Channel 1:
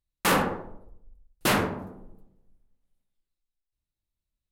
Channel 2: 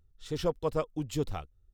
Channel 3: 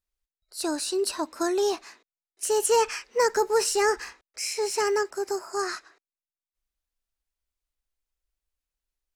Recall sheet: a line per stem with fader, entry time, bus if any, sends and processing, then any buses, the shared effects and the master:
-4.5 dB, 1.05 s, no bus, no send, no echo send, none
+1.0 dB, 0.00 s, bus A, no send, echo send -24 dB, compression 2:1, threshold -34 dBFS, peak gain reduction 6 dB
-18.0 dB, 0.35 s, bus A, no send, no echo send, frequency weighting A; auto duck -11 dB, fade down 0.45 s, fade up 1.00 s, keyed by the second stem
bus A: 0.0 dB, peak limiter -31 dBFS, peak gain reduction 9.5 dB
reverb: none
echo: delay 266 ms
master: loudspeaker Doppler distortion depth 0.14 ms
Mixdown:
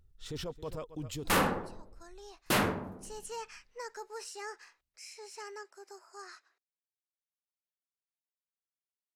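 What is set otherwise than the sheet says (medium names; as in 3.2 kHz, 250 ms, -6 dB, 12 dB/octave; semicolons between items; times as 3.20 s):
stem 2: missing compression 2:1, threshold -34 dBFS, peak gain reduction 6 dB; stem 3: entry 0.35 s -> 0.60 s; master: missing loudspeaker Doppler distortion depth 0.14 ms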